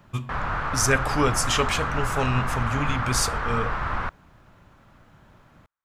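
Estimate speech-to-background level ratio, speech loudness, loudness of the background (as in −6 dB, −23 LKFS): 2.0 dB, −26.0 LKFS, −28.0 LKFS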